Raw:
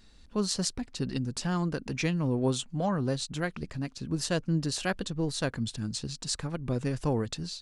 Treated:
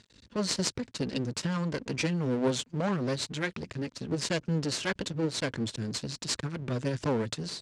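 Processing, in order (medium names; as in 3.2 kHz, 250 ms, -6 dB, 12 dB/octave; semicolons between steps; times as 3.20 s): half-wave rectifier; cabinet simulation 100–8100 Hz, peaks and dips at 110 Hz +4 dB, 760 Hz -7 dB, 1.2 kHz -4 dB; trim +6.5 dB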